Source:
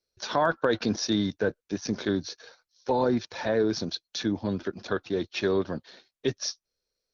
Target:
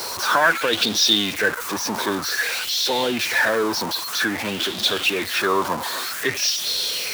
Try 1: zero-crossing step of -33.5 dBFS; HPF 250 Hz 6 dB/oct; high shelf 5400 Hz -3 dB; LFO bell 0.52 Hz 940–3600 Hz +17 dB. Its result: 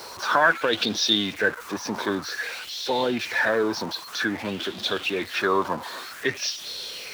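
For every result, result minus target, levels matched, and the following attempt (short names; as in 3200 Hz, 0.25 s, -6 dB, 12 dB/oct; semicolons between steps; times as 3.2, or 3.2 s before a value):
8000 Hz band -5.5 dB; zero-crossing step: distortion -6 dB
zero-crossing step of -33.5 dBFS; HPF 250 Hz 6 dB/oct; high shelf 5400 Hz +6 dB; LFO bell 0.52 Hz 940–3600 Hz +17 dB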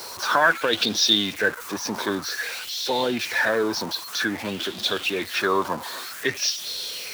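zero-crossing step: distortion -6 dB
zero-crossing step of -26 dBFS; HPF 250 Hz 6 dB/oct; high shelf 5400 Hz +6 dB; LFO bell 0.52 Hz 940–3600 Hz +17 dB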